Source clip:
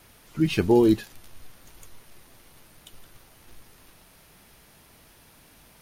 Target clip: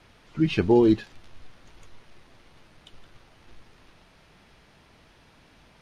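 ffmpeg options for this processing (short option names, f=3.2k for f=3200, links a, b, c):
-af "lowpass=4.4k"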